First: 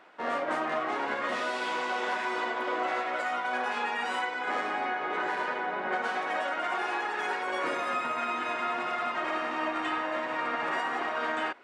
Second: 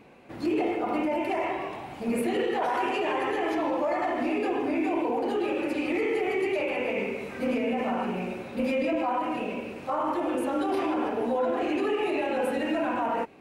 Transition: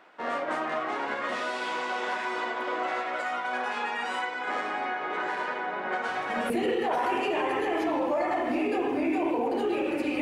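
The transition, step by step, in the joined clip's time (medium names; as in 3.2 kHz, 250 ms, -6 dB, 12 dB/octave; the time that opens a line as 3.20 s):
first
6.08 s: add second from 1.79 s 0.42 s -8 dB
6.50 s: go over to second from 2.21 s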